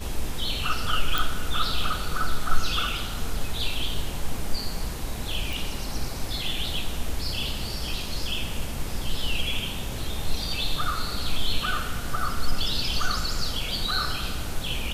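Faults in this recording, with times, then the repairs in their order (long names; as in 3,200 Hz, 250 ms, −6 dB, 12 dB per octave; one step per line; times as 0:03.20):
0:01.18: click
0:05.53: click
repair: click removal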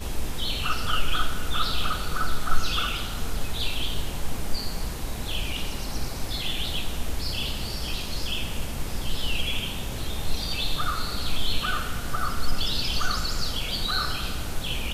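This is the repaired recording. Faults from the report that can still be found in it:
none of them is left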